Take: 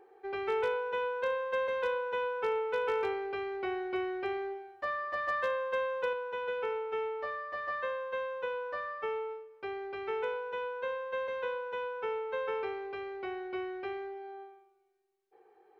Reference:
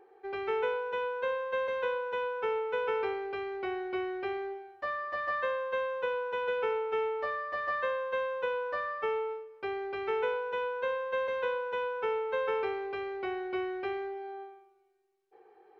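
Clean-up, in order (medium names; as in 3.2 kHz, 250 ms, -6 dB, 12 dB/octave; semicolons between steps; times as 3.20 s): clip repair -25 dBFS; gain correction +3.5 dB, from 6.13 s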